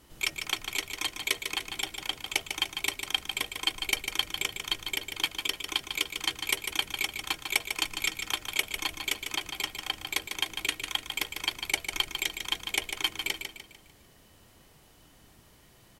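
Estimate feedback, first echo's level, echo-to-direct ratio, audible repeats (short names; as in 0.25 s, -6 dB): 40%, -7.0 dB, -6.0 dB, 4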